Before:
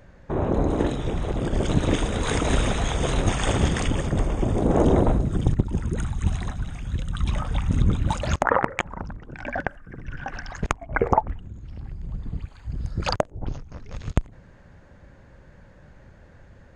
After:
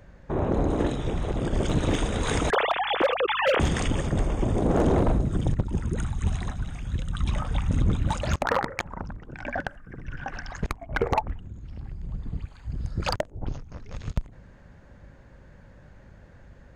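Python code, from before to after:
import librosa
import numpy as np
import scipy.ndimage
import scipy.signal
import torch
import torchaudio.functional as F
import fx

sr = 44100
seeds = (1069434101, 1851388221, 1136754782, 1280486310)

y = fx.sine_speech(x, sr, at=(2.5, 3.6))
y = np.clip(y, -10.0 ** (-14.5 / 20.0), 10.0 ** (-14.5 / 20.0))
y = fx.add_hum(y, sr, base_hz=50, snr_db=29)
y = y * 10.0 ** (-1.5 / 20.0)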